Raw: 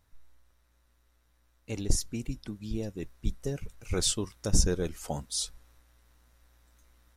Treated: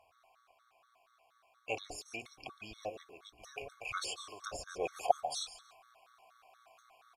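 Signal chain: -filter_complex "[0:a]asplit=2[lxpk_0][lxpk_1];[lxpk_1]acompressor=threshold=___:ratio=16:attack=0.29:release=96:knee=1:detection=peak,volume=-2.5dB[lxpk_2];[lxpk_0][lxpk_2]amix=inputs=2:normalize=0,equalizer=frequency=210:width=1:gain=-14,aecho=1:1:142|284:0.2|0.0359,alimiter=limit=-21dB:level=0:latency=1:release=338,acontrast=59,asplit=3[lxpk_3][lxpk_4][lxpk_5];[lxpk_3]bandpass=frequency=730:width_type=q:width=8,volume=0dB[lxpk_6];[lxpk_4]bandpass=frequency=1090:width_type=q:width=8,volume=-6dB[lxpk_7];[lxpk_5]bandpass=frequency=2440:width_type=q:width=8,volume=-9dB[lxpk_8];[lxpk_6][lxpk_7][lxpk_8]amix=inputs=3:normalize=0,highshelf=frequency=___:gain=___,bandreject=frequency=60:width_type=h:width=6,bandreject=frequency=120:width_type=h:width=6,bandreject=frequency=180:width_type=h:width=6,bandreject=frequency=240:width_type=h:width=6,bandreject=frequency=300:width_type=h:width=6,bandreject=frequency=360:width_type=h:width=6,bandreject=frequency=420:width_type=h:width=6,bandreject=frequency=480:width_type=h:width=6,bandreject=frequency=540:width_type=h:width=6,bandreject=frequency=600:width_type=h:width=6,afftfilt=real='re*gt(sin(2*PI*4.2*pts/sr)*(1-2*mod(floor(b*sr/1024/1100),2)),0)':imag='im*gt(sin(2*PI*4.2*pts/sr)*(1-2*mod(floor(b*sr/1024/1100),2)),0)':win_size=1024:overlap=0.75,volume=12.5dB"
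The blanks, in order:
-40dB, 9800, 11.5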